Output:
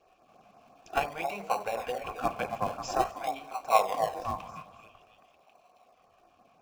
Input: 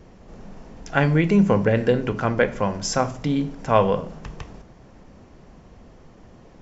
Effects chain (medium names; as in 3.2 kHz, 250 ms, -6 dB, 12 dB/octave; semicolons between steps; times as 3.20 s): vowel filter a; tilt EQ +4 dB/octave; on a send: repeats whose band climbs or falls 273 ms, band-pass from 650 Hz, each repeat 0.7 oct, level -5 dB; on the sum: dynamic bell 860 Hz, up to +7 dB, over -47 dBFS, Q 3.5; in parallel at -9 dB: decimation with a swept rate 37×, swing 60% 0.49 Hz; on the sum: LFO notch sine 5.8 Hz 300–3300 Hz; modulated delay 210 ms, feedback 52%, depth 158 cents, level -22.5 dB; trim +1.5 dB